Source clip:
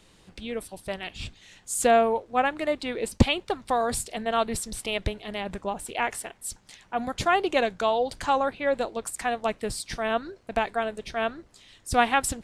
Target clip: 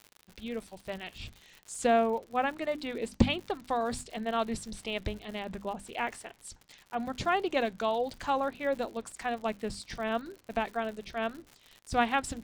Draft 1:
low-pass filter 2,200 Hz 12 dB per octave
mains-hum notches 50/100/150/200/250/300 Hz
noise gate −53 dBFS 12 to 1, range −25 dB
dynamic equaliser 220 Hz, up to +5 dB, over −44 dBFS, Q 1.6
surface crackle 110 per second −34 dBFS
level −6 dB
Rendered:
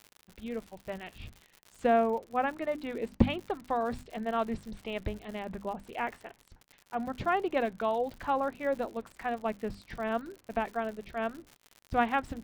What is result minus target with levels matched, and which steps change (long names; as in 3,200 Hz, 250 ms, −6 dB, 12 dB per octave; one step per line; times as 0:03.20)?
8,000 Hz band −13.5 dB
change: low-pass filter 6,800 Hz 12 dB per octave